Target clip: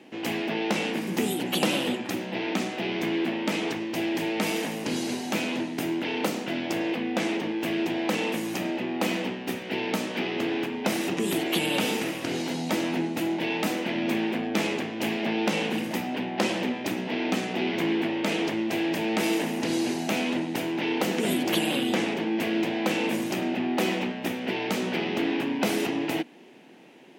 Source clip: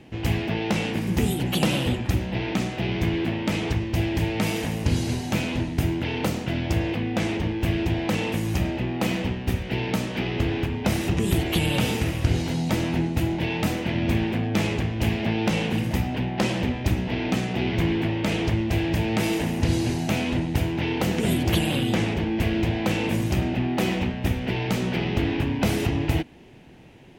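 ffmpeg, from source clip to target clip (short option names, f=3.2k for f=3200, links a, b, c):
-af "highpass=f=220:w=0.5412,highpass=f=220:w=1.3066"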